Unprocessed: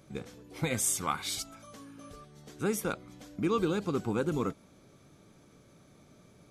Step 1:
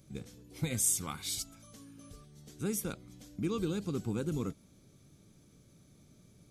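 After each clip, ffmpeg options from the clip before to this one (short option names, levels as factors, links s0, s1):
-af "equalizer=f=1000:w=0.36:g=-13.5,volume=1.26"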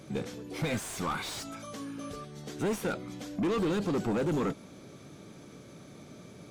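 -filter_complex "[0:a]asplit=2[s0][s1];[s1]highpass=f=720:p=1,volume=50.1,asoftclip=type=tanh:threshold=0.178[s2];[s0][s2]amix=inputs=2:normalize=0,lowpass=f=1200:p=1,volume=0.501,volume=0.562"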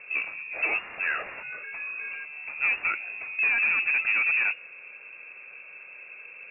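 -af "lowpass=f=2400:t=q:w=0.5098,lowpass=f=2400:t=q:w=0.6013,lowpass=f=2400:t=q:w=0.9,lowpass=f=2400:t=q:w=2.563,afreqshift=-2800,volume=1.68"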